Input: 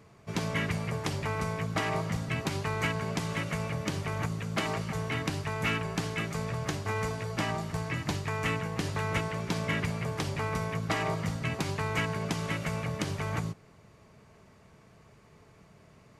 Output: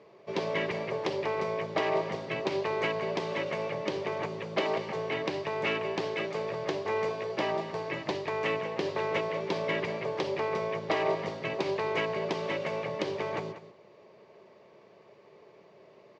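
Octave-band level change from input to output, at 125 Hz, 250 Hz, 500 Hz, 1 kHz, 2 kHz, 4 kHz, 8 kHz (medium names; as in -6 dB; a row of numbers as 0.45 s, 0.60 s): -11.0 dB, -3.5 dB, +7.0 dB, +1.0 dB, -1.0 dB, -0.5 dB, under -10 dB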